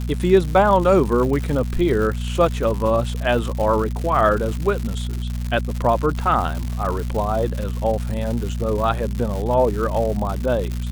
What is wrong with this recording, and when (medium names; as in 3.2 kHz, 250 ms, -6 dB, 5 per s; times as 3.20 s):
crackle 190 per s -25 dBFS
hum 60 Hz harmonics 4 -25 dBFS